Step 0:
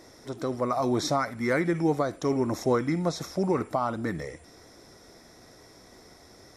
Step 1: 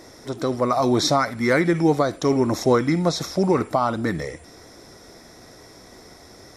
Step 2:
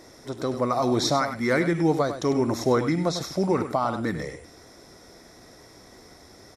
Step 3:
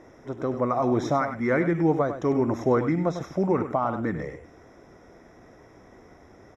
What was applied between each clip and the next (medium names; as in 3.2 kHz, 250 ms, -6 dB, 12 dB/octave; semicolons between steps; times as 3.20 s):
dynamic bell 4.1 kHz, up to +5 dB, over -52 dBFS, Q 1.6; trim +6.5 dB
echo from a far wall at 17 m, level -10 dB; trim -4 dB
boxcar filter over 10 samples